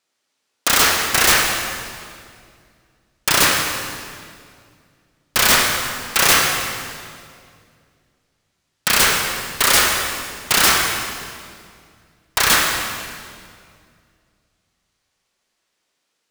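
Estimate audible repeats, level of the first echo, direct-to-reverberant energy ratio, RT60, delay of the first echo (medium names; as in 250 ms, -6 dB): no echo, no echo, 0.5 dB, 2.2 s, no echo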